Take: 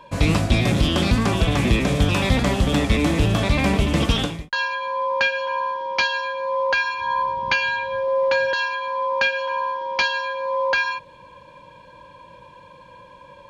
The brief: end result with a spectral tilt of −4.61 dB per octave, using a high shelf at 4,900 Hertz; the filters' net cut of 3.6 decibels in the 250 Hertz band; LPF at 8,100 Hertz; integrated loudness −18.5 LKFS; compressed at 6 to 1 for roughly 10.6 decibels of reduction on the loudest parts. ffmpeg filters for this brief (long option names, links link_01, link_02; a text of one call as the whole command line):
ffmpeg -i in.wav -af "lowpass=8100,equalizer=frequency=250:width_type=o:gain=-5,highshelf=frequency=4900:gain=5,acompressor=threshold=-25dB:ratio=6,volume=9.5dB" out.wav